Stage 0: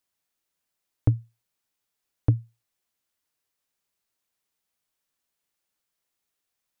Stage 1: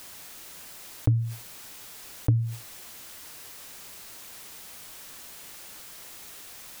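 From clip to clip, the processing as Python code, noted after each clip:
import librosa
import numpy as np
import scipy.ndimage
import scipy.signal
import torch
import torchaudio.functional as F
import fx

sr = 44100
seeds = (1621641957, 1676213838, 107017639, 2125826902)

y = fx.env_flatten(x, sr, amount_pct=70)
y = y * 10.0 ** (-2.5 / 20.0)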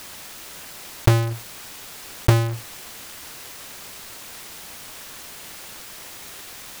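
y = fx.halfwave_hold(x, sr)
y = y * 10.0 ** (3.0 / 20.0)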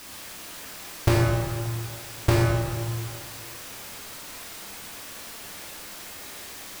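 y = fx.rev_plate(x, sr, seeds[0], rt60_s=2.1, hf_ratio=0.55, predelay_ms=0, drr_db=-4.0)
y = y * 10.0 ** (-5.5 / 20.0)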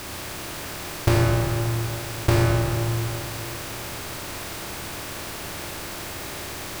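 y = fx.bin_compress(x, sr, power=0.6)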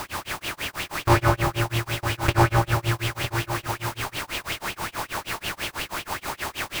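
y = x * (1.0 - 0.99 / 2.0 + 0.99 / 2.0 * np.cos(2.0 * np.pi * 6.2 * (np.arange(len(x)) / sr)))
y = y + 10.0 ** (-10.0 / 20.0) * np.pad(y, (int(957 * sr / 1000.0), 0))[:len(y)]
y = fx.bell_lfo(y, sr, hz=5.4, low_hz=850.0, high_hz=3100.0, db=14)
y = y * 10.0 ** (2.0 / 20.0)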